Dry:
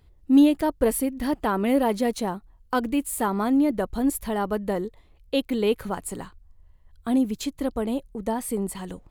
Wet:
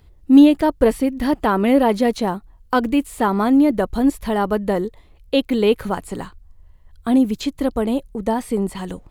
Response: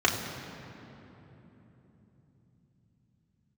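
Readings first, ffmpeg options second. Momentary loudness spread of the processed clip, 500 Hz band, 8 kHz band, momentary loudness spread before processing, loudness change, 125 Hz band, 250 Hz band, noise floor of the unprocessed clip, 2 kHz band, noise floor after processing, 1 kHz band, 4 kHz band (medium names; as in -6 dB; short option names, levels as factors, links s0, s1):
12 LU, +6.5 dB, -4.0 dB, 11 LU, +6.5 dB, +6.5 dB, +6.5 dB, -56 dBFS, +6.5 dB, -50 dBFS, +6.5 dB, +6.0 dB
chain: -filter_complex "[0:a]acrossover=split=5600[s0][s1];[s1]acompressor=threshold=0.00398:ratio=4:attack=1:release=60[s2];[s0][s2]amix=inputs=2:normalize=0,volume=2.11"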